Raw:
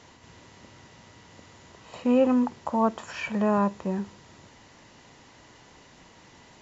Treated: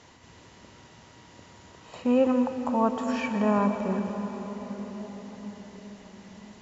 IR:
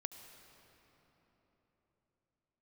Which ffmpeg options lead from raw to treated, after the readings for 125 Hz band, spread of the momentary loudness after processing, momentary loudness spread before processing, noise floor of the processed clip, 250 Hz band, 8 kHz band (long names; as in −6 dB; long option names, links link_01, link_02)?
+0.5 dB, 21 LU, 12 LU, −53 dBFS, 0.0 dB, can't be measured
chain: -filter_complex "[1:a]atrim=start_sample=2205,asetrate=26901,aresample=44100[link_01];[0:a][link_01]afir=irnorm=-1:irlink=0"